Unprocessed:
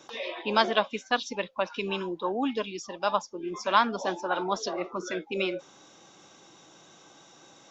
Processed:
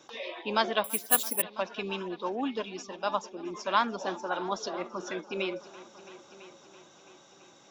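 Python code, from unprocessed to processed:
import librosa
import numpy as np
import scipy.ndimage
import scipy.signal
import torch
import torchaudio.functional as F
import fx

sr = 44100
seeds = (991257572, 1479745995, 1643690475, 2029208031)

y = fx.echo_heads(x, sr, ms=333, heads='all three', feedback_pct=50, wet_db=-22.5)
y = fx.resample_bad(y, sr, factor=4, down='none', up='zero_stuff', at=(0.84, 1.42))
y = y * librosa.db_to_amplitude(-3.5)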